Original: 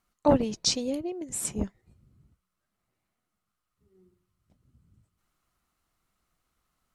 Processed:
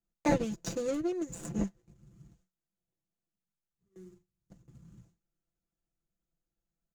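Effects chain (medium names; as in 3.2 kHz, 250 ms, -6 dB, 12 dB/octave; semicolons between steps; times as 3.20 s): median filter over 41 samples; gate with hold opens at -57 dBFS; peaking EQ 6.8 kHz +14.5 dB 0.45 oct; comb 5.9 ms, depth 74%; three bands compressed up and down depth 40%; trim -1.5 dB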